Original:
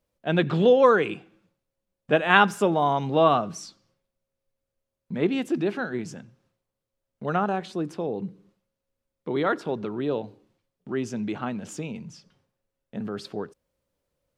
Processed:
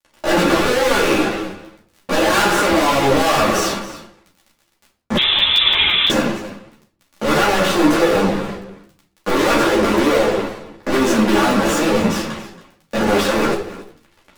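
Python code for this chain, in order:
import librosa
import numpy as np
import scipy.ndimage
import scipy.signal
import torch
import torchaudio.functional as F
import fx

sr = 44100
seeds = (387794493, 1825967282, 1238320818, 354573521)

p1 = fx.bin_compress(x, sr, power=0.6)
p2 = scipy.signal.sosfilt(scipy.signal.butter(2, 300.0, 'highpass', fs=sr, output='sos'), p1)
p3 = fx.high_shelf(p2, sr, hz=2300.0, db=-5.5)
p4 = fx.fuzz(p3, sr, gain_db=39.0, gate_db=-45.0)
p5 = fx.dmg_crackle(p4, sr, seeds[0], per_s=12.0, level_db=-29.0)
p6 = p5 + fx.echo_single(p5, sr, ms=276, db=-16.5, dry=0)
p7 = fx.room_shoebox(p6, sr, seeds[1], volume_m3=520.0, walls='furnished', distance_m=2.4)
p8 = fx.freq_invert(p7, sr, carrier_hz=3800, at=(5.17, 6.1))
p9 = fx.buffer_crackle(p8, sr, first_s=0.97, period_s=0.17, block=128, kind='zero')
p10 = fx.ensemble(p9, sr)
y = p10 * librosa.db_to_amplitude(-1.5)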